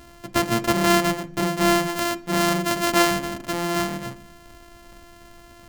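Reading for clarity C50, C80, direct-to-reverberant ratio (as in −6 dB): 17.0 dB, 21.5 dB, 7.0 dB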